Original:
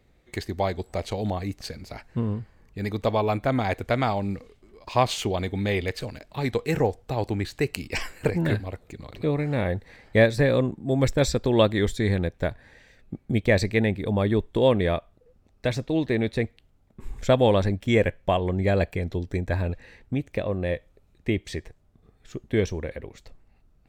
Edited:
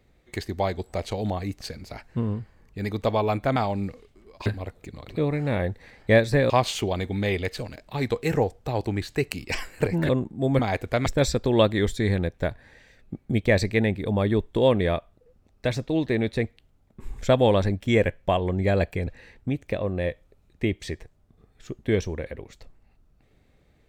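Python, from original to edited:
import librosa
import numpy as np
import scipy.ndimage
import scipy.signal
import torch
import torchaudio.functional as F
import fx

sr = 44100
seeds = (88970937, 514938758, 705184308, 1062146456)

y = fx.edit(x, sr, fx.move(start_s=3.56, length_s=0.47, to_s=11.06),
    fx.move(start_s=8.52, length_s=2.04, to_s=4.93),
    fx.cut(start_s=19.07, length_s=0.65), tone=tone)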